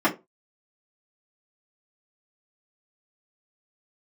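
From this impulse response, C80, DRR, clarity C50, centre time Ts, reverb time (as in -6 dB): 22.5 dB, -8.5 dB, 15.5 dB, 12 ms, 0.25 s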